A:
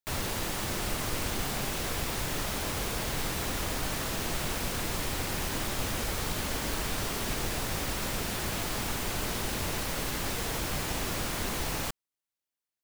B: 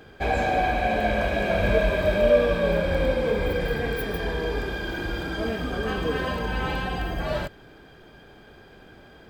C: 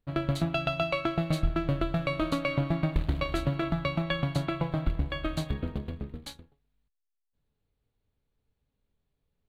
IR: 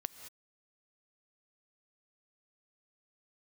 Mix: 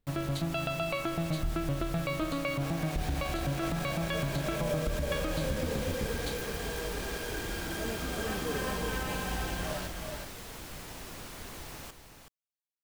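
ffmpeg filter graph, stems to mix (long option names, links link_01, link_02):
-filter_complex "[0:a]volume=-12dB,asplit=2[link_01][link_02];[link_02]volume=-8.5dB[link_03];[1:a]dynaudnorm=framelen=240:gausssize=17:maxgain=11.5dB,acrusher=bits=3:mix=0:aa=0.000001,adelay=2400,volume=-18.5dB,asplit=2[link_04][link_05];[link_05]volume=-3.5dB[link_06];[2:a]volume=0.5dB[link_07];[link_03][link_06]amix=inputs=2:normalize=0,aecho=0:1:375:1[link_08];[link_01][link_04][link_07][link_08]amix=inputs=4:normalize=0,alimiter=limit=-21.5dB:level=0:latency=1:release=81"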